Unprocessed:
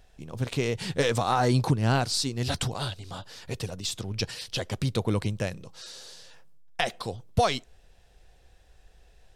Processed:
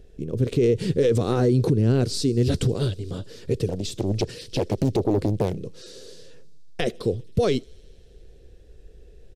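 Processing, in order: resonant low shelf 590 Hz +11 dB, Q 3; limiter -10 dBFS, peak gain reduction 10 dB; on a send: thin delay 79 ms, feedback 84%, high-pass 4400 Hz, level -23 dB; on the sum: downsampling 32000 Hz; 3.68–5.58 Doppler distortion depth 0.88 ms; gain -2 dB

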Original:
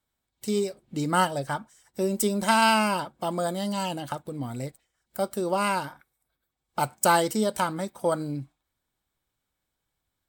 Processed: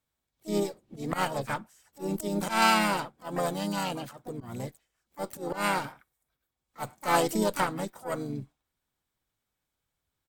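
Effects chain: auto swell 0.131 s; added harmonics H 2 -33 dB, 6 -20 dB, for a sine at -8 dBFS; harmoniser -3 st -8 dB, +7 st -7 dB; gain -3.5 dB

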